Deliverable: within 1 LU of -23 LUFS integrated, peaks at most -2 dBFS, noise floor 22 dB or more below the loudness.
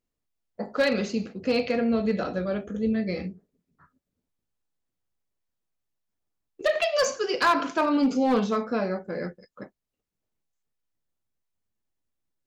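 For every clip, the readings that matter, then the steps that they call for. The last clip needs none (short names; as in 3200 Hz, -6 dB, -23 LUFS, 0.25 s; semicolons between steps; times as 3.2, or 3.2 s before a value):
clipped 0.4%; flat tops at -16.0 dBFS; loudness -26.0 LUFS; peak -16.0 dBFS; loudness target -23.0 LUFS
-> clip repair -16 dBFS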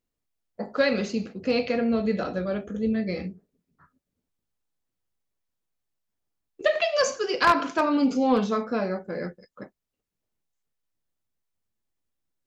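clipped 0.0%; loudness -25.5 LUFS; peak -7.0 dBFS; loudness target -23.0 LUFS
-> gain +2.5 dB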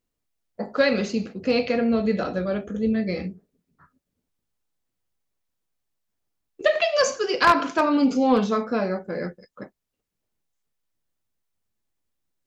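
loudness -23.0 LUFS; peak -4.5 dBFS; noise floor -82 dBFS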